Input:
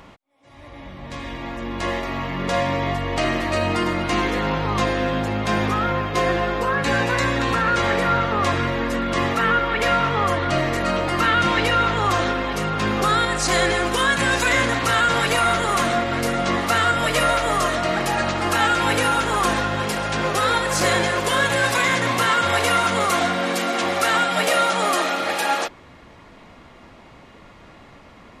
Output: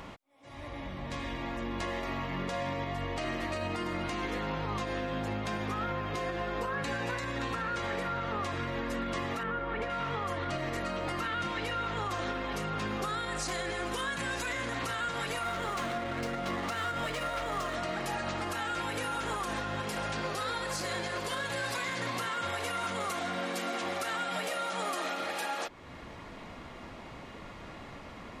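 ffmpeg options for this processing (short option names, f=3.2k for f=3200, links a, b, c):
-filter_complex "[0:a]asettb=1/sr,asplit=3[a][b][c];[a]atrim=end=9.434[d];[b]atrim=start=9.43:end=9.9,asetpts=PTS-STARTPTS,afade=t=in:d=0.004:c=qsin,afade=t=out:st=0.466:d=0.004:c=qsin,lowpass=f=1.2k:p=1[e];[c]atrim=start=9.896[f];[d][e]acrossfade=d=0.004:c1=hsin:c2=qsin[g];[g][f]acrossfade=d=0.004:c1=qsin:c2=hsin,asettb=1/sr,asplit=3[h][i][j];[h]atrim=end=15.424[k];[i]atrim=start=15.42:end=17.75,asetpts=PTS-STARTPTS,afade=t=in:d=0.004:c=qsin,afade=t=out:st=2.326:d=0.004:c=qsin,adynamicsmooth=sensitivity=4.5:basefreq=2.5k[l];[j]atrim=start=17.746[m];[k][l]acrossfade=d=0.004:c1=hsin:c2=qsin[n];[n][m]acrossfade=d=0.004:c1=qsin:c2=hsin,asettb=1/sr,asplit=3[o][p][q];[o]atrim=end=20.154[r];[p]atrim=start=20.15:end=22.2,asetpts=PTS-STARTPTS,afade=t=in:d=0.004:c=qsin,afade=t=out:st=2.046:d=0.004:c=qsin,equalizer=f=4.5k:w=4.7:g=6[s];[q]atrim=start=22.196[t];[r][s]acrossfade=d=0.004:c1=hsin:c2=qsin[u];[u][t]acrossfade=d=0.004:c1=qsin:c2=hsin,acompressor=threshold=-38dB:ratio=2,alimiter=level_in=1dB:limit=-24dB:level=0:latency=1:release=102,volume=-1dB"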